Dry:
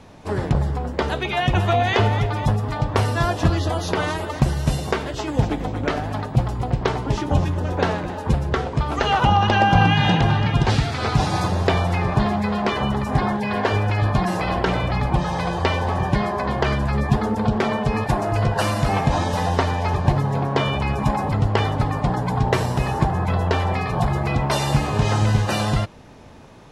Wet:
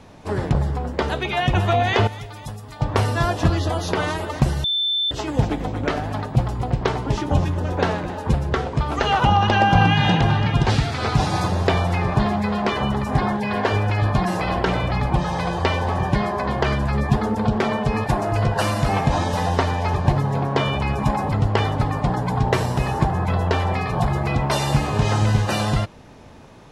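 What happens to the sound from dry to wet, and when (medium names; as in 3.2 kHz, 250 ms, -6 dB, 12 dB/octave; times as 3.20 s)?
2.07–2.81 s: pre-emphasis filter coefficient 0.8
4.64–5.11 s: bleep 3.54 kHz -18.5 dBFS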